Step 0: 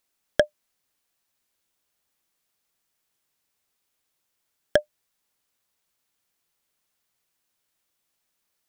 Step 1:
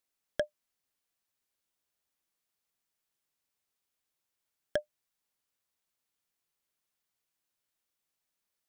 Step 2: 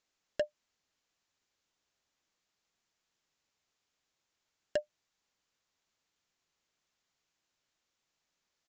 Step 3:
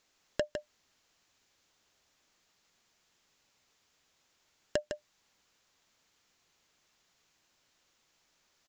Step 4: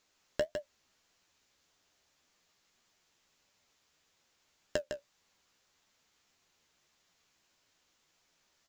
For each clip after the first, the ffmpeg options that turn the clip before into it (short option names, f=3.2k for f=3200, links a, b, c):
-af "alimiter=limit=-8.5dB:level=0:latency=1:release=19,volume=-8.5dB"
-af "acompressor=threshold=-32dB:ratio=2,aresample=16000,volume=30dB,asoftclip=hard,volume=-30dB,aresample=44100,volume=5.5dB"
-af "acompressor=threshold=-41dB:ratio=4,aecho=1:1:156:0.447,volume=10dB"
-af "acrusher=bits=8:mode=log:mix=0:aa=0.000001,flanger=delay=9.7:depth=6.5:regen=41:speed=1.7:shape=triangular,volume=3dB"